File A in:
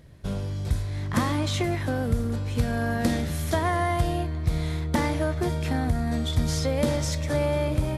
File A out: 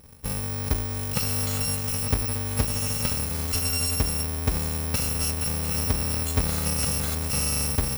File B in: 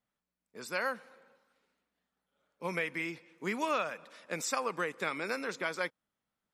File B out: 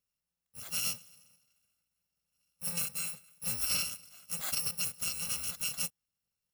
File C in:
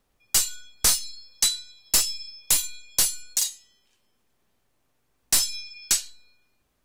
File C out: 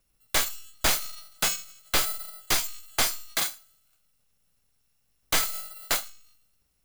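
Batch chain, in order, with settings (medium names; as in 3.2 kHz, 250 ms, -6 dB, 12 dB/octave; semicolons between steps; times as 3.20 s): bit-reversed sample order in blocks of 128 samples; slew-rate limiter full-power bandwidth 640 Hz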